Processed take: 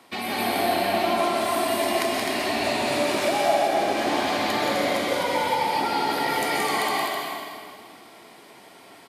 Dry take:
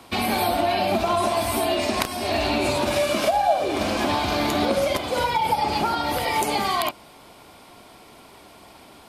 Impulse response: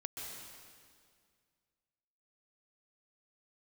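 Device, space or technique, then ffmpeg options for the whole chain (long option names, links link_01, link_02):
stadium PA: -filter_complex "[0:a]highpass=180,equalizer=frequency=1900:width_type=o:width=0.27:gain=7,aecho=1:1:174.9|256.6:0.562|0.562[link_01];[1:a]atrim=start_sample=2205[link_02];[link_01][link_02]afir=irnorm=-1:irlink=0,volume=-2dB"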